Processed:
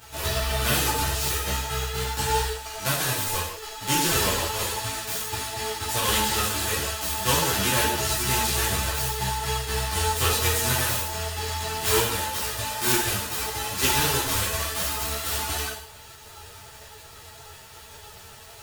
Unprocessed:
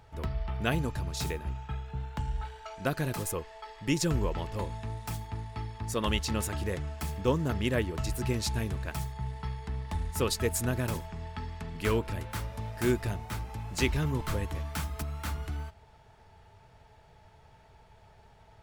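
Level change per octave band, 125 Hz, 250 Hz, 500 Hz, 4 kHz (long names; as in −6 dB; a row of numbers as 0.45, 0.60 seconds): +1.5, −0.5, +4.0, +14.0 decibels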